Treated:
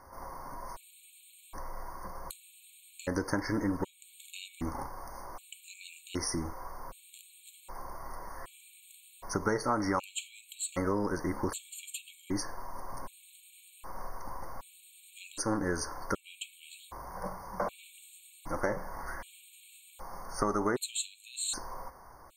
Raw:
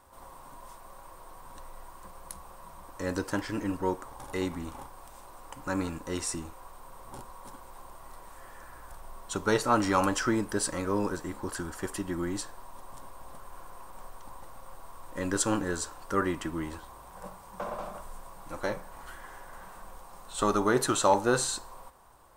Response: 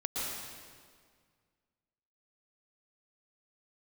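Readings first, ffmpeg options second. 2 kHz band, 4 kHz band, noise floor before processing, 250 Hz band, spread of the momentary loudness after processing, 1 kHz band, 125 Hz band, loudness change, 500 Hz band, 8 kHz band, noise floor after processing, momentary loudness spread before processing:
−4.5 dB, −3.0 dB, −50 dBFS, −4.0 dB, 21 LU, −5.0 dB, −3.0 dB, −6.0 dB, −5.5 dB, −3.5 dB, −59 dBFS, 23 LU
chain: -filter_complex "[0:a]acompressor=threshold=-32dB:ratio=6[link_01];[1:a]atrim=start_sample=2205,afade=type=out:start_time=0.15:duration=0.01,atrim=end_sample=7056[link_02];[link_01][link_02]afir=irnorm=-1:irlink=0,afftfilt=real='re*gt(sin(2*PI*0.65*pts/sr)*(1-2*mod(floor(b*sr/1024/2200),2)),0)':imag='im*gt(sin(2*PI*0.65*pts/sr)*(1-2*mod(floor(b*sr/1024/2200),2)),0)':win_size=1024:overlap=0.75,volume=7dB"

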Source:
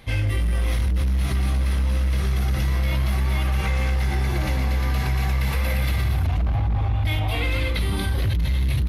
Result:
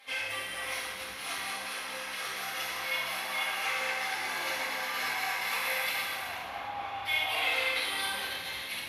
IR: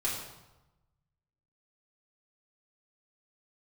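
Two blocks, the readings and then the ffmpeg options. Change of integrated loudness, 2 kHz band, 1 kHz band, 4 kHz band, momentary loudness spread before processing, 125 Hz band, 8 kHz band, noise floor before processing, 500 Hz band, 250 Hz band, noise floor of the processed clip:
−8.5 dB, +1.5 dB, −1.0 dB, +1.5 dB, 1 LU, −38.0 dB, +0.5 dB, −23 dBFS, −7.0 dB, −21.0 dB, −40 dBFS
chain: -filter_complex "[0:a]highpass=890[link_01];[1:a]atrim=start_sample=2205,asetrate=29547,aresample=44100[link_02];[link_01][link_02]afir=irnorm=-1:irlink=0,volume=-7.5dB"

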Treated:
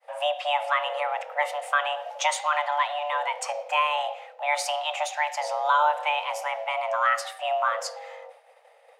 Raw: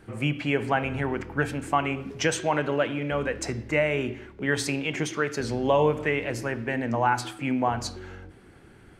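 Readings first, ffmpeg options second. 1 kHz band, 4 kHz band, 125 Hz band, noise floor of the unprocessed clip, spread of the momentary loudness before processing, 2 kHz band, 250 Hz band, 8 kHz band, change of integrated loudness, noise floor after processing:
+5.5 dB, +4.5 dB, below −40 dB, −52 dBFS, 7 LU, +1.0 dB, below −40 dB, +0.5 dB, +0.5 dB, −56 dBFS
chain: -af "agate=range=-33dB:threshold=-46dB:ratio=3:detection=peak,afreqshift=440"

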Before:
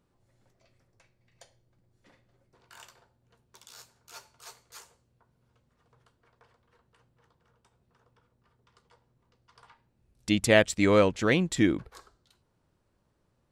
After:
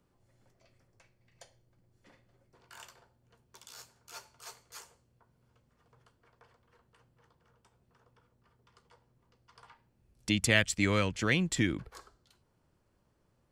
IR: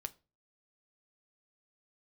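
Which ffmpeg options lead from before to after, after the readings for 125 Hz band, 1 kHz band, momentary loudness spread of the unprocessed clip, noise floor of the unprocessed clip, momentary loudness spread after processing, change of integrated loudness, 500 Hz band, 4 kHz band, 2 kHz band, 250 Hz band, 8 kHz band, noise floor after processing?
−1.5 dB, −6.5 dB, 9 LU, −73 dBFS, 18 LU, −5.0 dB, −11.0 dB, −0.5 dB, −1.5 dB, −6.0 dB, 0.0 dB, −73 dBFS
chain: -filter_complex "[0:a]bandreject=frequency=3800:width=17,acrossover=split=180|1400|2200[link_01][link_02][link_03][link_04];[link_02]acompressor=threshold=-32dB:ratio=6[link_05];[link_01][link_05][link_03][link_04]amix=inputs=4:normalize=0"

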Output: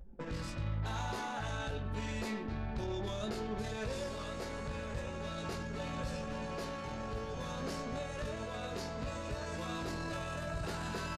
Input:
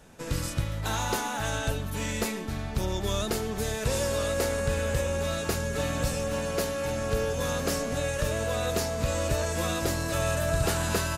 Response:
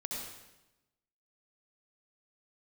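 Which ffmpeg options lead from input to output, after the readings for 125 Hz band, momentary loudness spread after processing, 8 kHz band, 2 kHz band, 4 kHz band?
−10.0 dB, 3 LU, −18.0 dB, −10.0 dB, −11.5 dB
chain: -filter_complex "[0:a]aemphasis=mode=reproduction:type=50fm,anlmdn=0.398,adynamicequalizer=threshold=0.00141:dfrequency=4500:dqfactor=3.3:tfrequency=4500:tqfactor=3.3:attack=5:release=100:ratio=0.375:range=2:mode=boostabove:tftype=bell,acompressor=mode=upward:threshold=-33dB:ratio=2.5,alimiter=level_in=2dB:limit=-24dB:level=0:latency=1:release=16,volume=-2dB,asplit=2[link_01][link_02];[link_02]adelay=19,volume=-5.5dB[link_03];[link_01][link_03]amix=inputs=2:normalize=0,asplit=2[link_04][link_05];[link_05]adelay=100,highpass=300,lowpass=3400,asoftclip=type=hard:threshold=-30.5dB,volume=-11dB[link_06];[link_04][link_06]amix=inputs=2:normalize=0,aresample=32000,aresample=44100,volume=-5.5dB"

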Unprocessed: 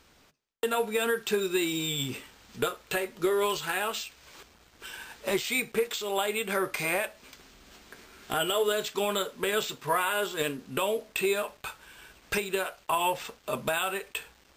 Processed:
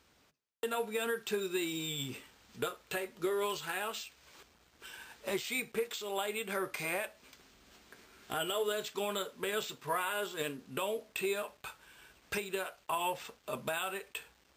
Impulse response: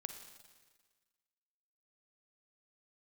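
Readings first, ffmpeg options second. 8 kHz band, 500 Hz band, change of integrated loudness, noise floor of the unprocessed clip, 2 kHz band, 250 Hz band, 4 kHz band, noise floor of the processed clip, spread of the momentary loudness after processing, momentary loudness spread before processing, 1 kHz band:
−7.0 dB, −7.0 dB, −7.0 dB, −61 dBFS, −7.0 dB, −7.0 dB, −7.0 dB, −68 dBFS, 11 LU, 11 LU, −7.0 dB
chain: -af "highpass=46,volume=-7dB"

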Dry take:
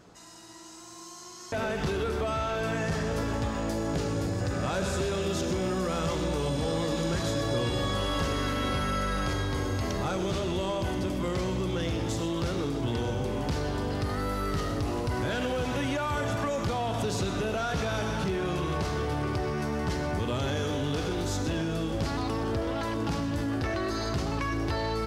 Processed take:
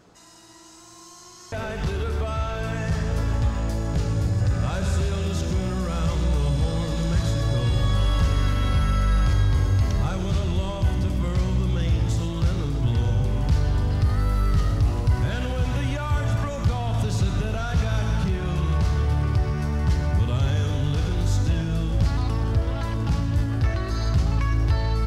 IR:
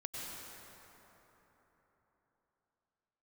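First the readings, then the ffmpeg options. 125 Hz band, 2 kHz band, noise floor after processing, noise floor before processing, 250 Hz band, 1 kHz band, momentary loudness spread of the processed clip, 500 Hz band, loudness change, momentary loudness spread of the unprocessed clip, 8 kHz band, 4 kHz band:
+10.5 dB, 0.0 dB, −46 dBFS, −45 dBFS, +1.5 dB, −1.0 dB, 4 LU, −2.5 dB, +6.0 dB, 2 LU, 0.0 dB, 0.0 dB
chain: -af "asubboost=boost=6:cutoff=130"

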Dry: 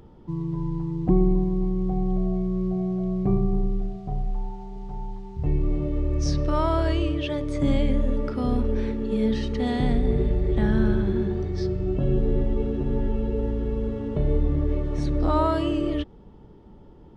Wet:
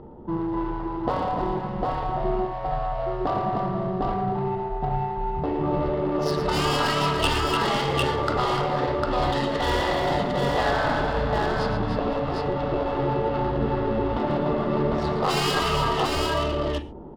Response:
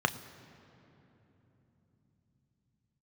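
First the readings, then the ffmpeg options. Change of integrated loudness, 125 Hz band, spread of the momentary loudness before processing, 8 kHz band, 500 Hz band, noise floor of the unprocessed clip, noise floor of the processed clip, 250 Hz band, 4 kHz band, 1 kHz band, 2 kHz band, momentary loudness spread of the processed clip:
+0.5 dB, −3.0 dB, 9 LU, can't be measured, +3.5 dB, −48 dBFS, −31 dBFS, −3.0 dB, +12.0 dB, +10.5 dB, +11.5 dB, 6 LU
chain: -filter_complex "[0:a]adynamicsmooth=sensitivity=4:basefreq=690,tiltshelf=frequency=860:gain=-7.5,aeval=exprs='clip(val(0),-1,0.075)':channel_layout=same,aecho=1:1:114|296|503|752:0.316|0.422|0.112|0.668,asplit=2[link_01][link_02];[1:a]atrim=start_sample=2205,afade=type=out:start_time=0.16:duration=0.01,atrim=end_sample=7497,asetrate=34839,aresample=44100[link_03];[link_02][link_03]afir=irnorm=-1:irlink=0,volume=-11dB[link_04];[link_01][link_04]amix=inputs=2:normalize=0,afftfilt=real='re*lt(hypot(re,im),0.224)':imag='im*lt(hypot(re,im),0.224)':win_size=1024:overlap=0.75,volume=9dB"

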